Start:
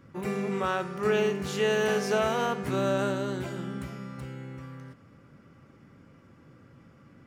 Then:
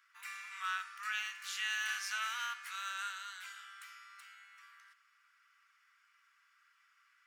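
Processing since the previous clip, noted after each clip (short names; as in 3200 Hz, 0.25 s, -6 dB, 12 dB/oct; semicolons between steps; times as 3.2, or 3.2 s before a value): steep high-pass 1300 Hz 36 dB/oct; gain -3 dB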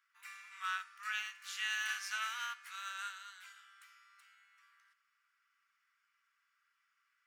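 upward expander 1.5:1, over -53 dBFS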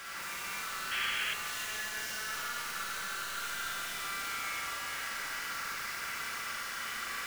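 infinite clipping; Schroeder reverb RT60 3.8 s, combs from 33 ms, DRR -6.5 dB; painted sound noise, 0.91–1.34, 1500–3400 Hz -35 dBFS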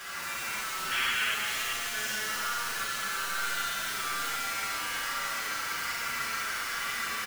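split-band echo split 1400 Hz, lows 0.268 s, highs 0.389 s, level -6.5 dB; endless flanger 7.9 ms -1.2 Hz; gain +7 dB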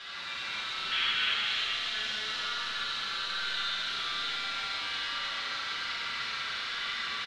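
synth low-pass 3800 Hz, resonance Q 5.1; echo 0.299 s -5.5 dB; gain -6 dB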